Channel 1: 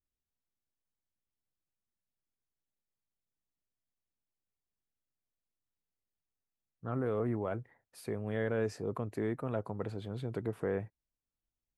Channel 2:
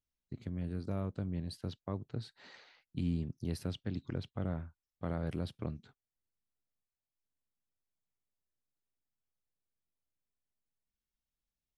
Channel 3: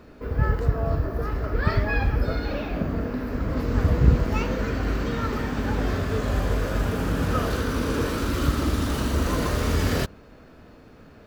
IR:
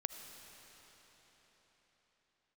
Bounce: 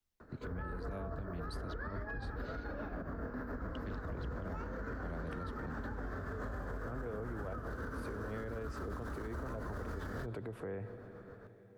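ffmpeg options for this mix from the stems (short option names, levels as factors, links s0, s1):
-filter_complex "[0:a]highshelf=f=4300:g=-5.5,volume=0.944,asplit=2[s0][s1];[s1]volume=0.501[s2];[1:a]volume=1.19,asplit=3[s3][s4][s5];[s3]atrim=end=2.64,asetpts=PTS-STARTPTS,afade=t=out:st=2.636:d=0.004:c=hsin[s6];[s4]atrim=start=2.64:end=3.75,asetpts=PTS-STARTPTS,volume=0[s7];[s5]atrim=start=3.75,asetpts=PTS-STARTPTS,afade=t=in:d=0.004:c=hsin[s8];[s6][s7][s8]concat=n=3:v=0:a=1[s9];[2:a]highshelf=f=2000:t=q:w=3:g=-8,tremolo=f=7.2:d=0.61,adelay=200,volume=0.501[s10];[3:a]atrim=start_sample=2205[s11];[s2][s11]afir=irnorm=-1:irlink=0[s12];[s0][s9][s10][s12]amix=inputs=4:normalize=0,acrossover=split=83|210|420[s13][s14][s15][s16];[s13]acompressor=threshold=0.0178:ratio=4[s17];[s14]acompressor=threshold=0.00562:ratio=4[s18];[s15]acompressor=threshold=0.00794:ratio=4[s19];[s16]acompressor=threshold=0.0112:ratio=4[s20];[s17][s18][s19][s20]amix=inputs=4:normalize=0,alimiter=level_in=2.82:limit=0.0631:level=0:latency=1:release=67,volume=0.355"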